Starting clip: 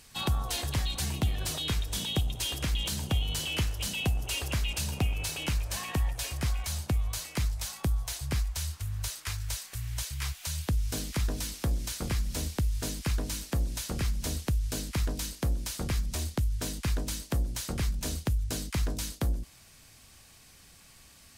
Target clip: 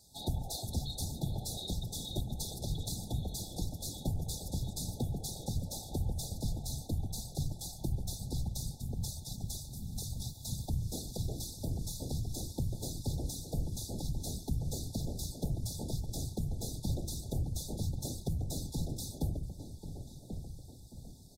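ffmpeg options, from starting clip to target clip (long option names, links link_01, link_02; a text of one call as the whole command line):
ffmpeg -i in.wav -filter_complex "[0:a]asplit=2[link_01][link_02];[link_02]adelay=1088,lowpass=frequency=1500:poles=1,volume=-7dB,asplit=2[link_03][link_04];[link_04]adelay=1088,lowpass=frequency=1500:poles=1,volume=0.47,asplit=2[link_05][link_06];[link_06]adelay=1088,lowpass=frequency=1500:poles=1,volume=0.47,asplit=2[link_07][link_08];[link_08]adelay=1088,lowpass=frequency=1500:poles=1,volume=0.47,asplit=2[link_09][link_10];[link_10]adelay=1088,lowpass=frequency=1500:poles=1,volume=0.47,asplit=2[link_11][link_12];[link_12]adelay=1088,lowpass=frequency=1500:poles=1,volume=0.47[link_13];[link_01][link_03][link_05][link_07][link_09][link_11][link_13]amix=inputs=7:normalize=0,afftfilt=real='hypot(re,im)*cos(2*PI*random(0))':imag='hypot(re,im)*sin(2*PI*random(1))':win_size=512:overlap=0.75,afftfilt=real='re*(1-between(b*sr/4096,900,3400))':imag='im*(1-between(b*sr/4096,900,3400))':win_size=4096:overlap=0.75" out.wav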